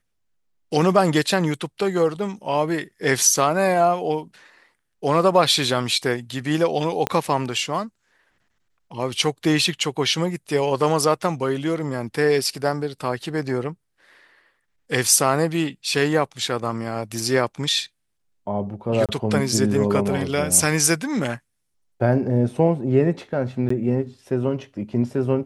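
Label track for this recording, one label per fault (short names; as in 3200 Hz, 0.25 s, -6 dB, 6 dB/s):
7.070000	7.070000	pop -7 dBFS
19.060000	19.090000	gap 27 ms
23.690000	23.700000	gap 14 ms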